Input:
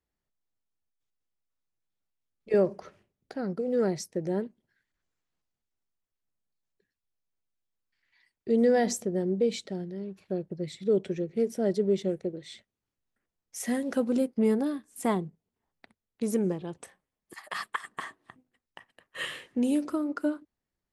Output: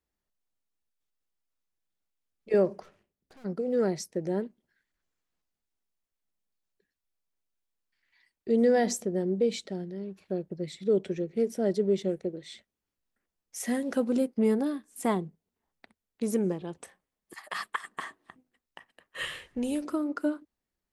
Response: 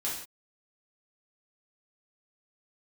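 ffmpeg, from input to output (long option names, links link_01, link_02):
-filter_complex "[0:a]equalizer=frequency=120:width=5:gain=-13,asplit=3[link_01][link_02][link_03];[link_01]afade=type=out:start_time=2.82:duration=0.02[link_04];[link_02]aeval=exprs='(tanh(447*val(0)+0.7)-tanh(0.7))/447':channel_layout=same,afade=type=in:start_time=2.82:duration=0.02,afade=type=out:start_time=3.44:duration=0.02[link_05];[link_03]afade=type=in:start_time=3.44:duration=0.02[link_06];[link_04][link_05][link_06]amix=inputs=3:normalize=0,asplit=3[link_07][link_08][link_09];[link_07]afade=type=out:start_time=19.19:duration=0.02[link_10];[link_08]asubboost=boost=9.5:cutoff=78,afade=type=in:start_time=19.19:duration=0.02,afade=type=out:start_time=19.82:duration=0.02[link_11];[link_09]afade=type=in:start_time=19.82:duration=0.02[link_12];[link_10][link_11][link_12]amix=inputs=3:normalize=0"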